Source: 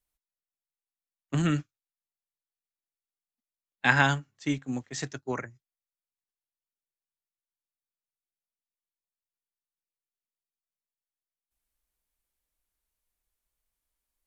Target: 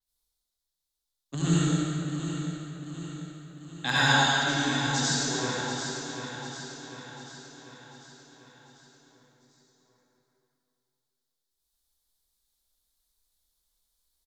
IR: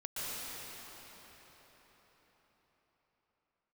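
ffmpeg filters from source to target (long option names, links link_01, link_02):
-filter_complex "[0:a]highshelf=frequency=3100:width_type=q:width=3:gain=6.5,aecho=1:1:744|1488|2232|2976|3720|4464:0.355|0.188|0.0997|0.0528|0.028|0.0148,asoftclip=type=hard:threshold=-7.5dB[link_01];[1:a]atrim=start_sample=2205,asetrate=79380,aresample=44100[link_02];[link_01][link_02]afir=irnorm=-1:irlink=0,adynamicequalizer=threshold=0.00447:dfrequency=7300:dqfactor=0.7:tfrequency=7300:tqfactor=0.7:attack=5:release=100:ratio=0.375:range=2.5:mode=boostabove:tftype=highshelf,volume=4dB"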